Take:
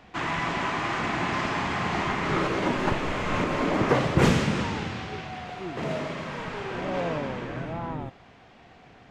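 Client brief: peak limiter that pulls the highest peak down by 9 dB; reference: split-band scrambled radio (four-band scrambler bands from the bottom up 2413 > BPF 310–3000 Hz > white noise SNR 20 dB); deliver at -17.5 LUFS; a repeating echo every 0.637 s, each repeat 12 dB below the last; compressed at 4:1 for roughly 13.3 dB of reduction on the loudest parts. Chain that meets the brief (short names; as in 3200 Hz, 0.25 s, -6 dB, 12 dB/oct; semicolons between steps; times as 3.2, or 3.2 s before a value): compressor 4:1, threshold -32 dBFS; limiter -28.5 dBFS; feedback echo 0.637 s, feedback 25%, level -12 dB; four-band scrambler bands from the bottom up 2413; BPF 310–3000 Hz; white noise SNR 20 dB; gain +21 dB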